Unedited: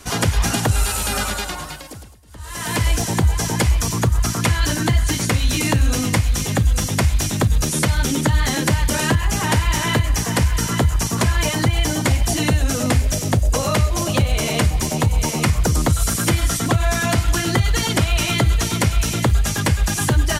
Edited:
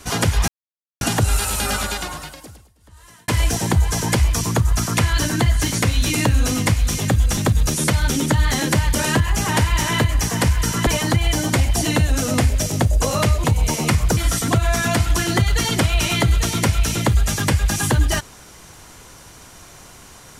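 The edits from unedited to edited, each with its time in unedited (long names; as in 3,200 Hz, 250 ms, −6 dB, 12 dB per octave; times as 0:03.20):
0:00.48: splice in silence 0.53 s
0:01.52–0:02.75: fade out linear
0:06.84–0:07.32: remove
0:10.82–0:11.39: remove
0:13.96–0:14.99: remove
0:15.72–0:16.35: remove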